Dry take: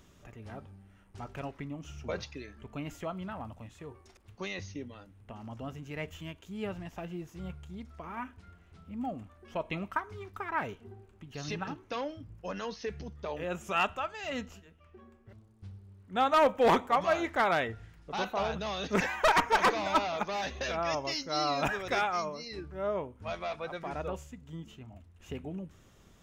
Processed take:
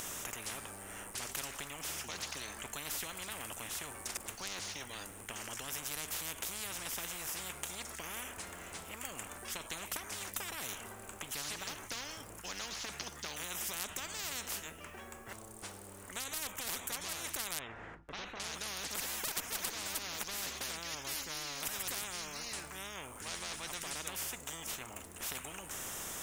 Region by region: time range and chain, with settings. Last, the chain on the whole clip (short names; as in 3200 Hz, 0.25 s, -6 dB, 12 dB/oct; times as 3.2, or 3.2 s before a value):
17.59–18.4 LPF 1400 Hz + gate with hold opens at -42 dBFS, closes at -46 dBFS
whole clip: resonant high shelf 6000 Hz +10.5 dB, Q 1.5; compressor 6:1, threshold -33 dBFS; spectral compressor 10:1; gain +5.5 dB